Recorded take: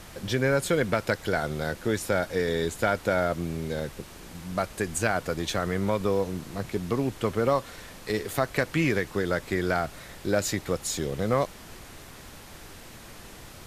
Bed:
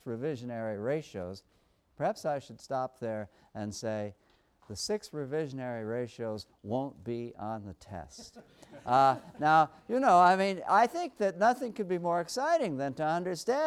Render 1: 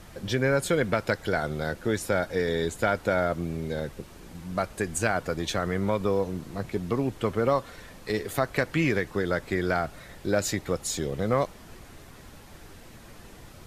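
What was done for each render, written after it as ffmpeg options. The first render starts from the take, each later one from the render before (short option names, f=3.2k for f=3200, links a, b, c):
-af "afftdn=nr=6:nf=-46"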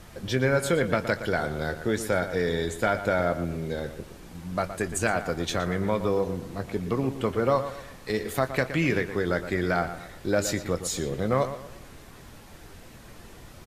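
-filter_complex "[0:a]asplit=2[a][b];[b]adelay=23,volume=-13dB[c];[a][c]amix=inputs=2:normalize=0,asplit=2[d][e];[e]adelay=118,lowpass=f=4k:p=1,volume=-11dB,asplit=2[f][g];[g]adelay=118,lowpass=f=4k:p=1,volume=0.38,asplit=2[h][i];[i]adelay=118,lowpass=f=4k:p=1,volume=0.38,asplit=2[j][k];[k]adelay=118,lowpass=f=4k:p=1,volume=0.38[l];[d][f][h][j][l]amix=inputs=5:normalize=0"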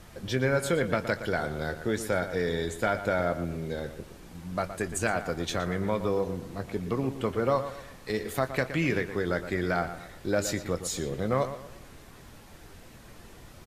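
-af "volume=-2.5dB"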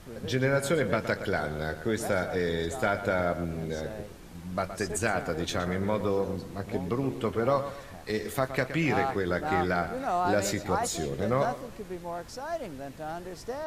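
-filter_complex "[1:a]volume=-6.5dB[a];[0:a][a]amix=inputs=2:normalize=0"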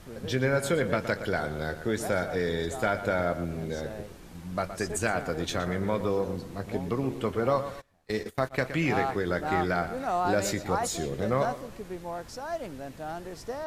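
-filter_complex "[0:a]asplit=3[a][b][c];[a]afade=t=out:st=7.8:d=0.02[d];[b]agate=range=-24dB:threshold=-36dB:ratio=16:release=100:detection=peak,afade=t=in:st=7.8:d=0.02,afade=t=out:st=8.58:d=0.02[e];[c]afade=t=in:st=8.58:d=0.02[f];[d][e][f]amix=inputs=3:normalize=0"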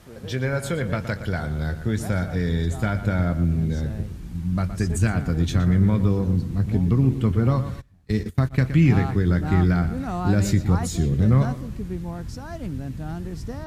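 -af "highpass=41,asubboost=boost=11.5:cutoff=170"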